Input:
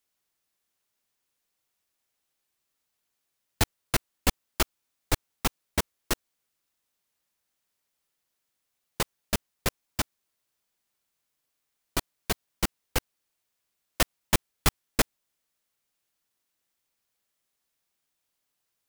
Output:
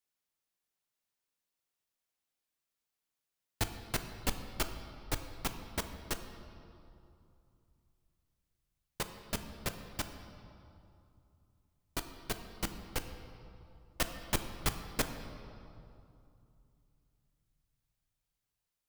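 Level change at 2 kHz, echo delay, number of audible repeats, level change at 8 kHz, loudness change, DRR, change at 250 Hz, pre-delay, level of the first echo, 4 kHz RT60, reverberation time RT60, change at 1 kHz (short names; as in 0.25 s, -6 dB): -8.5 dB, none, none, -8.5 dB, -8.5 dB, 7.0 dB, -7.5 dB, 7 ms, none, 1.8 s, 2.7 s, -8.0 dB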